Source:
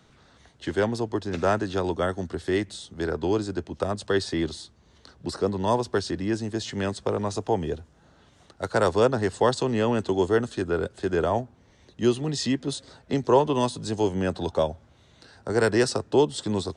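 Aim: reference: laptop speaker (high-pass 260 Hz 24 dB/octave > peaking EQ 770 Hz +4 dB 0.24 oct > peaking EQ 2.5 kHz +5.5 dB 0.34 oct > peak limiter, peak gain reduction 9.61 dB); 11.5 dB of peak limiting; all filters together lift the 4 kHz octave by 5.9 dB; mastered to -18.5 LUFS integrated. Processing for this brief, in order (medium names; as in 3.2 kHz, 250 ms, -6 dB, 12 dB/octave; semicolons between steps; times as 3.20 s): peaking EQ 4 kHz +6.5 dB; peak limiter -18.5 dBFS; high-pass 260 Hz 24 dB/octave; peaking EQ 770 Hz +4 dB 0.24 oct; peaking EQ 2.5 kHz +5.5 dB 0.34 oct; trim +16.5 dB; peak limiter -9.5 dBFS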